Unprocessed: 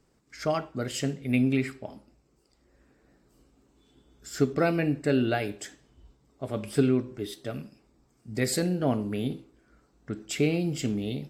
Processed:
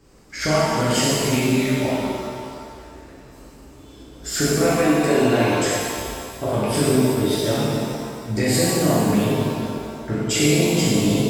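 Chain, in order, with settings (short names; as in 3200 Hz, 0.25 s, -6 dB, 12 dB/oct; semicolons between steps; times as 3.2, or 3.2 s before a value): 4.72–5.15 HPF 280 Hz 12 dB/oct; compressor, threshold -33 dBFS, peak gain reduction 14.5 dB; shimmer reverb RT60 2.1 s, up +7 st, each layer -8 dB, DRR -9.5 dB; gain +8.5 dB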